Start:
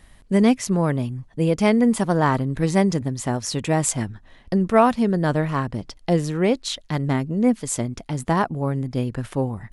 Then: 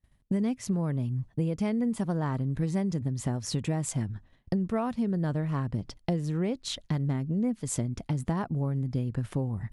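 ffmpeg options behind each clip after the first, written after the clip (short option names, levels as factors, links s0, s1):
-af "agate=range=0.0224:threshold=0.0141:ratio=3:detection=peak,equalizer=f=110:w=0.45:g=10,acompressor=threshold=0.0891:ratio=6,volume=0.562"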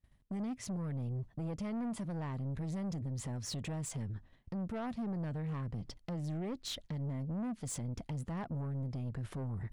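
-af "highshelf=f=7700:g=-5.5,alimiter=limit=0.0708:level=0:latency=1:release=74,asoftclip=type=tanh:threshold=0.0237,volume=0.794"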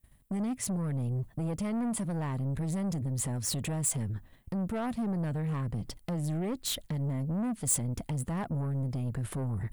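-af "aexciter=amount=4.5:drive=4.1:freq=7800,volume=2"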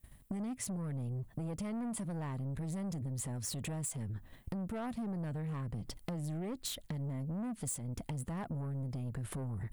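-af "acompressor=threshold=0.00794:ratio=6,volume=1.58"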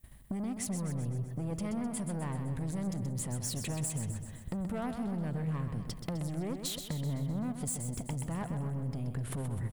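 -af "aecho=1:1:128|256|384|512|640|768|896:0.398|0.231|0.134|0.0777|0.0451|0.0261|0.0152,volume=1.33"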